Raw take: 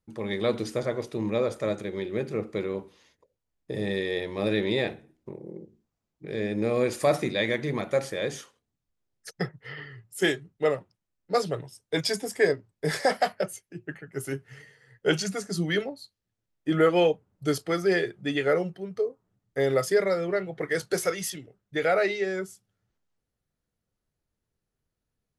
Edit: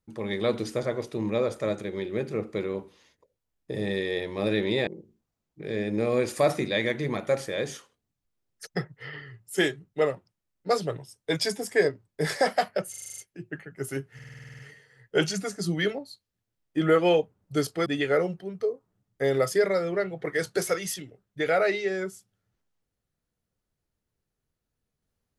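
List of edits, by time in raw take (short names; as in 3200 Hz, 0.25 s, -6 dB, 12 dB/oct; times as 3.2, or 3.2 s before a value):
4.87–5.51 cut
13.54 stutter 0.04 s, 8 plays
14.5 stutter 0.05 s, 10 plays
17.77–18.22 cut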